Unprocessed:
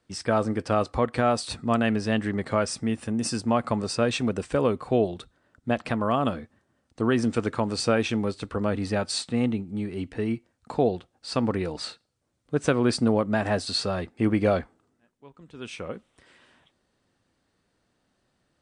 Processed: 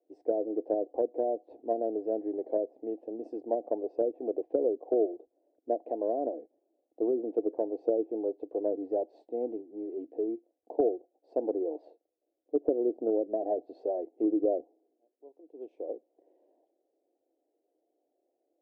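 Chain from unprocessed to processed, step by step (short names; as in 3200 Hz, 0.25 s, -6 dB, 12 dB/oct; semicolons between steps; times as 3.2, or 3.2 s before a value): elliptic band-pass 310–720 Hz, stop band 40 dB; treble ducked by the level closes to 480 Hz, closed at -23 dBFS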